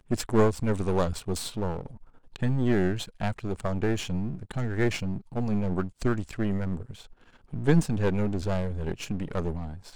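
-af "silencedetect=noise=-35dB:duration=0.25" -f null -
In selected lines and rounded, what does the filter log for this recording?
silence_start: 1.91
silence_end: 2.36 | silence_duration: 0.45
silence_start: 7.01
silence_end: 7.53 | silence_duration: 0.52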